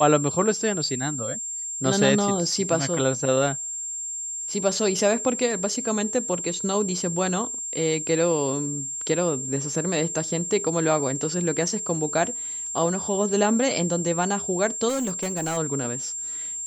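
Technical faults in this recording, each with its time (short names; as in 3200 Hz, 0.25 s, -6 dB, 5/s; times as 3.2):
tone 7400 Hz -29 dBFS
14.88–15.58 clipped -22.5 dBFS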